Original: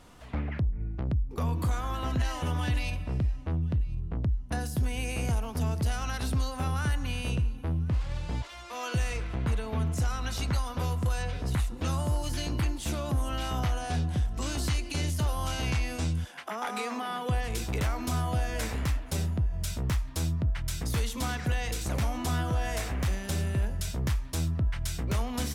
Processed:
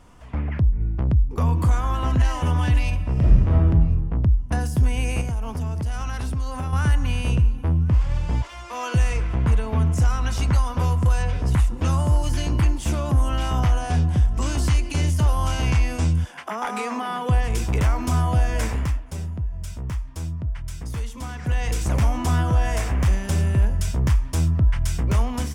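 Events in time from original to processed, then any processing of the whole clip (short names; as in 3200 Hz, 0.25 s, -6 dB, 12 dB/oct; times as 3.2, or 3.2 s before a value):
3.12–3.66 reverb throw, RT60 1.3 s, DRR -5 dB
5.21–6.73 compressor, threshold -32 dBFS
18.65–21.73 dip -9 dB, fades 0.39 s
whole clip: low shelf 140 Hz +6.5 dB; AGC gain up to 5 dB; thirty-one-band EQ 1000 Hz +4 dB, 4000 Hz -8 dB, 12500 Hz -7 dB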